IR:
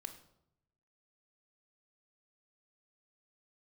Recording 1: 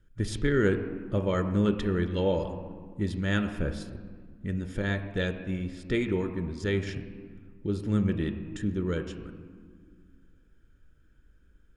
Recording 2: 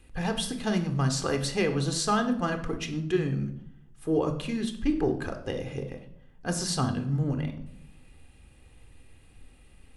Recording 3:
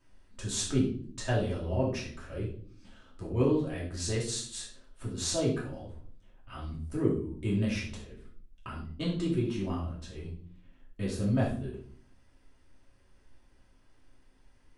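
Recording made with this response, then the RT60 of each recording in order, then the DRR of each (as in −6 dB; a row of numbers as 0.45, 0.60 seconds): 2; non-exponential decay, 0.80 s, 0.50 s; 7.0, 7.0, −6.5 decibels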